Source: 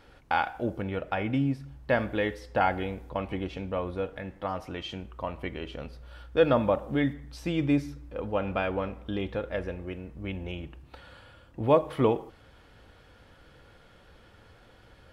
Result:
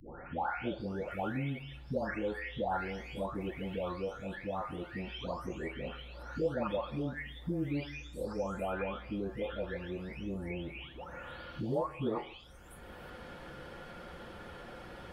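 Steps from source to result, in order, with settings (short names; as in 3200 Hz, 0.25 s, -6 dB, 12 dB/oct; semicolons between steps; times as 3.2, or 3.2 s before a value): spectral delay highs late, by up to 0.801 s; three-band squash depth 70%; gain -4.5 dB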